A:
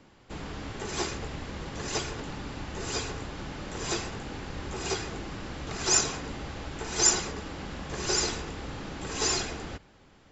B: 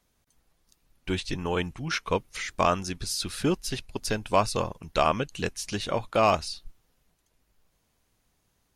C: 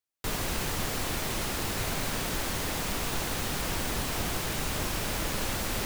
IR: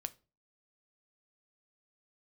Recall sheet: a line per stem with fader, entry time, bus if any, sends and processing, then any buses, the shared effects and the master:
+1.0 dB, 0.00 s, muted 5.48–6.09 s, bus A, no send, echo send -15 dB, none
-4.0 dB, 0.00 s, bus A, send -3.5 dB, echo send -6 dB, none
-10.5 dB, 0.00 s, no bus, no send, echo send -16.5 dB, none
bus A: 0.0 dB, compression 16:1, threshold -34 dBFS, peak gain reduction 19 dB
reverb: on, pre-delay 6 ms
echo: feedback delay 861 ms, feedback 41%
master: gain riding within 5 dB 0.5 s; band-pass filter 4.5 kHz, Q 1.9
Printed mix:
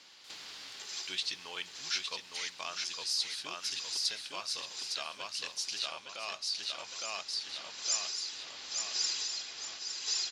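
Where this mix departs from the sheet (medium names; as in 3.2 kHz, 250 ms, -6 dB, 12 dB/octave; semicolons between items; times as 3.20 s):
stem A +1.0 dB -> +9.0 dB; stem B -4.0 dB -> +5.0 dB; stem C -10.5 dB -> -19.0 dB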